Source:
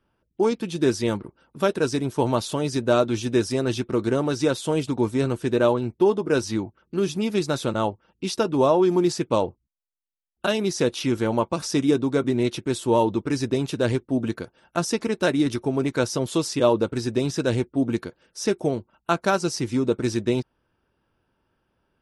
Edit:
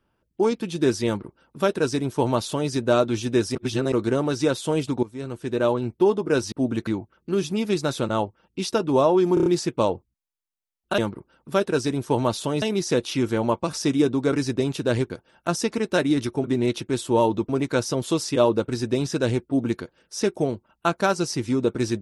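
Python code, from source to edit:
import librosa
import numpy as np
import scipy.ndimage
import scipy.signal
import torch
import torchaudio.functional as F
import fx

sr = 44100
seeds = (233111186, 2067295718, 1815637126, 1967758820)

y = fx.edit(x, sr, fx.duplicate(start_s=1.06, length_s=1.64, to_s=10.51),
    fx.reverse_span(start_s=3.55, length_s=0.37),
    fx.fade_in_from(start_s=5.03, length_s=0.83, floor_db=-18.5),
    fx.stutter(start_s=8.99, slice_s=0.03, count=5),
    fx.move(start_s=12.21, length_s=1.05, to_s=15.73),
    fx.move(start_s=14.04, length_s=0.35, to_s=6.52), tone=tone)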